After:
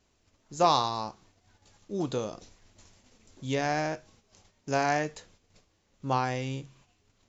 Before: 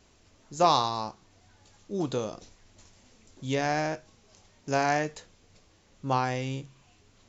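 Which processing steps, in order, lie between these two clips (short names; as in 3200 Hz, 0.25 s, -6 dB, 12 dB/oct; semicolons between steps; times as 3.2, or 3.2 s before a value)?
gate -58 dBFS, range -8 dB; gain -1 dB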